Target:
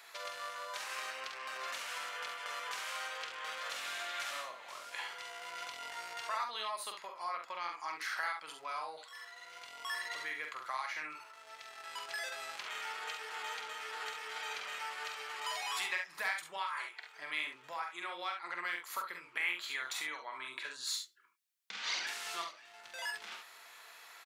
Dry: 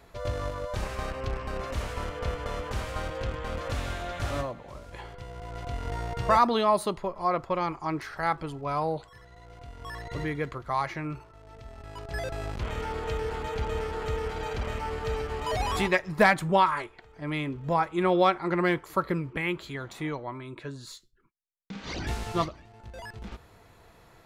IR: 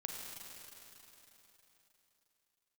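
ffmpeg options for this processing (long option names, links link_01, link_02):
-af "acompressor=threshold=-37dB:ratio=5,highpass=1500,aecho=1:1:46|69:0.531|0.398,volume=7dB"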